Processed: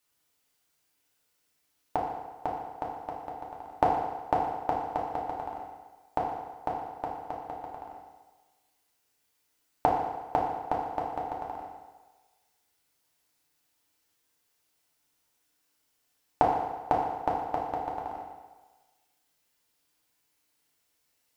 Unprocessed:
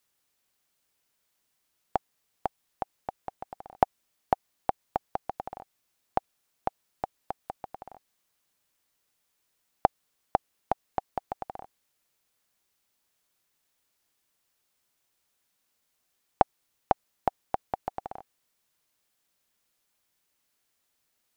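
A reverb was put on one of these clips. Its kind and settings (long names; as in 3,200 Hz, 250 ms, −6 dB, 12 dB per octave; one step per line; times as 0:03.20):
feedback delay network reverb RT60 1.3 s, low-frequency decay 0.8×, high-frequency decay 0.9×, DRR −4 dB
level −3.5 dB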